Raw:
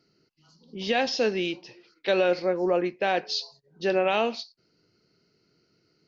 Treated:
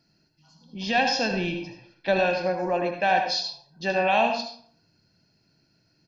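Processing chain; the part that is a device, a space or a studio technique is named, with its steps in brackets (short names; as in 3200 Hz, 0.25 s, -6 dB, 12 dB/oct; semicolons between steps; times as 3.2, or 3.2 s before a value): 1.31–2.19 tilt -2 dB/oct; microphone above a desk (comb 1.2 ms, depth 73%; reverb RT60 0.55 s, pre-delay 66 ms, DRR 4.5 dB)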